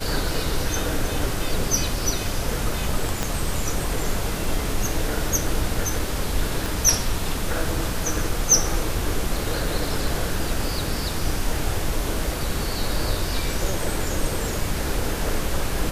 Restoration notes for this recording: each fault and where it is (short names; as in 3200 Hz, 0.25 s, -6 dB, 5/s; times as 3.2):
3.23 pop -8 dBFS
6.66 pop